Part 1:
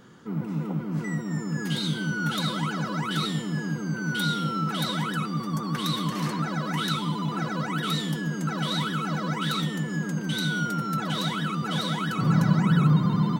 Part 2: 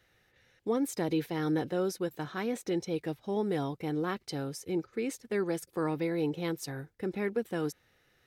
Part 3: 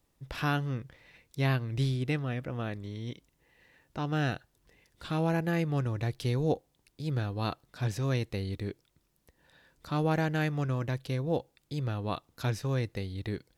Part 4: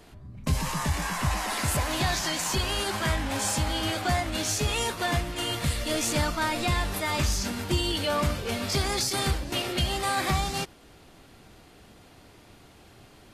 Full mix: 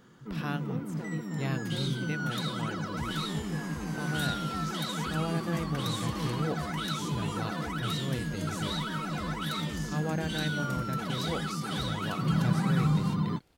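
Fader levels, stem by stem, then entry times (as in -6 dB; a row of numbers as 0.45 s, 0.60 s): -6.0 dB, -13.5 dB, -5.5 dB, -15.5 dB; 0.00 s, 0.00 s, 0.00 s, 2.50 s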